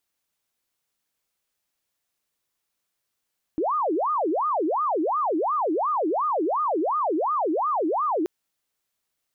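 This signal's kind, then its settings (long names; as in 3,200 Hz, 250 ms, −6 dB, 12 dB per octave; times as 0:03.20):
siren wail 304–1,240 Hz 2.8 per second sine −21 dBFS 4.68 s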